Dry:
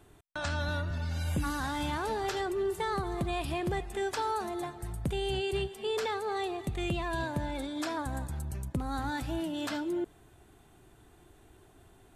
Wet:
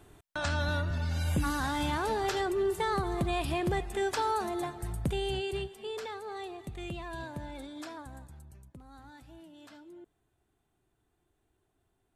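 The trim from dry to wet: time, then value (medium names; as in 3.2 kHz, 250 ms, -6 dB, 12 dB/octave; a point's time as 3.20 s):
5.00 s +2 dB
6.02 s -7 dB
7.72 s -7 dB
8.77 s -18 dB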